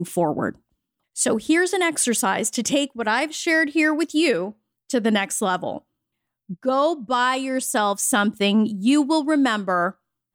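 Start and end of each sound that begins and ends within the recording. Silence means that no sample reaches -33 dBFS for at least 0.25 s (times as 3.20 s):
1.17–4.51 s
4.90–5.78 s
6.50–9.91 s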